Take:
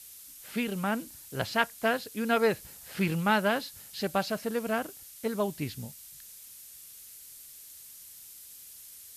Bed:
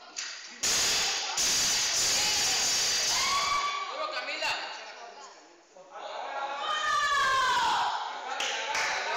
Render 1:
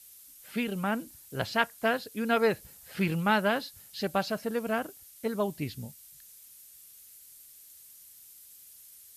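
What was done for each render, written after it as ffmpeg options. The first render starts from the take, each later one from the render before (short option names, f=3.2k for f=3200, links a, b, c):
-af "afftdn=nr=6:nf=-49"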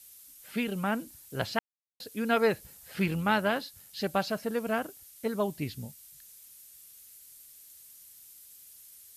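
-filter_complex "[0:a]asettb=1/sr,asplit=3[a][b][c];[a]atrim=end=3.064[d];[b]atrim=start=3.06:end=3.97,asetpts=PTS-STARTPTS,afade=t=in:d=0.004:c=qsin,afade=t=out:st=0.906:d=0.004:c=qsin,tremolo=f=90:d=0.261[e];[c]atrim=start=3.966[f];[d][e]acrossfade=d=0.004:c1=hsin:c2=qsin[g];[g][f]acrossfade=d=0.004:c1=qsin:c2=hsin,asplit=3[h][i][j];[h]atrim=end=1.59,asetpts=PTS-STARTPTS,afade=t=out:st=1.586:d=0.004:c=hsin[k];[i]atrim=start=1.59:end=2,asetpts=PTS-STARTPTS,volume=0[l];[j]atrim=start=2,asetpts=PTS-STARTPTS,afade=t=in:d=0.004:c=hsin[m];[k][l][m]concat=n=3:v=0:a=1"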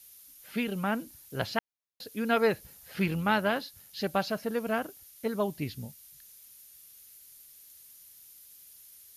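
-af "equalizer=f=8k:w=6.1:g=-10.5"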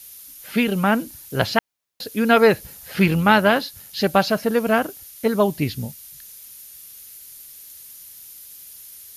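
-af "volume=11.5dB,alimiter=limit=-3dB:level=0:latency=1"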